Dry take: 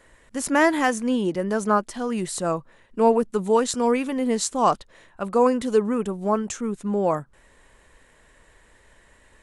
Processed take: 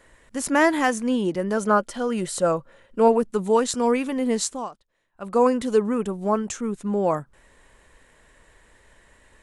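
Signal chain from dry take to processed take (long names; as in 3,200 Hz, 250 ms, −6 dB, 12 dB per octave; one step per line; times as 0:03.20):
0:01.57–0:03.08: hollow resonant body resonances 540/1,400/3,100 Hz, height 10 dB
0:04.44–0:05.37: duck −21.5 dB, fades 0.25 s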